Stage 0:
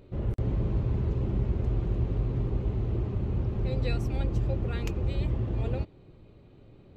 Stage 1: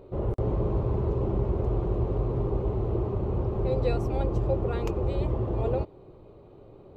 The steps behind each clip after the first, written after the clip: FFT filter 260 Hz 0 dB, 390 Hz +9 dB, 1.1 kHz +9 dB, 1.7 kHz -3 dB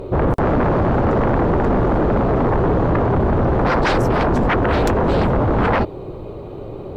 sine folder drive 15 dB, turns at -13 dBFS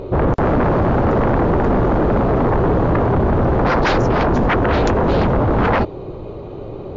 trim +1.5 dB; MP3 80 kbps 16 kHz

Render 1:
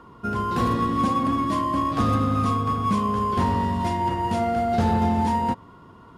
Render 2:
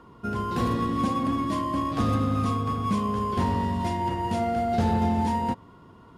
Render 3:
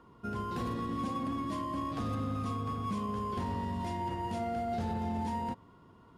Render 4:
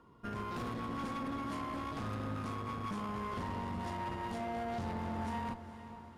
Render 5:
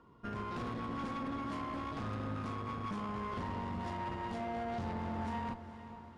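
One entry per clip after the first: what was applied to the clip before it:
peaking EQ 1.2 kHz -3.5 dB 0.85 oct; trim -2 dB
peak limiter -19.5 dBFS, peak gain reduction 5 dB; trim -7.5 dB
valve stage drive 36 dB, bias 0.8; echo that smears into a reverb 452 ms, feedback 55%, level -12.5 dB; trim +1.5 dB
distance through air 57 m

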